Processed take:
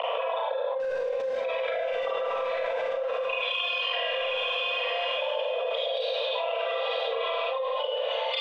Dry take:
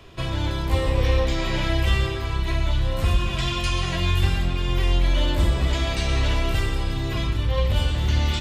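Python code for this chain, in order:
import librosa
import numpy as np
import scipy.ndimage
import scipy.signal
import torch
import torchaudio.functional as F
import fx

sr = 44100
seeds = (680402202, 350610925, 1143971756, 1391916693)

p1 = fx.envelope_sharpen(x, sr, power=3.0)
p2 = scipy.signal.sosfilt(scipy.signal.cheby1(10, 1.0, 470.0, 'highpass', fs=sr, output='sos'), p1)
p3 = fx.spec_box(p2, sr, start_s=5.74, length_s=0.6, low_hz=590.0, high_hz=3000.0, gain_db=-18)
p4 = fx.quant_dither(p3, sr, seeds[0], bits=6, dither='none')
p5 = p3 + F.gain(torch.from_numpy(p4), 0.5).numpy()
p6 = 10.0 ** (-35.5 / 20.0) * np.tanh(p5 / 10.0 ** (-35.5 / 20.0))
p7 = fx.air_absorb(p6, sr, metres=150.0)
p8 = p7 + fx.echo_diffused(p7, sr, ms=946, feedback_pct=54, wet_db=-13.0, dry=0)
p9 = fx.rev_schroeder(p8, sr, rt60_s=0.8, comb_ms=33, drr_db=-7.5)
p10 = fx.env_flatten(p9, sr, amount_pct=100)
y = F.gain(torch.from_numpy(p10), 2.5).numpy()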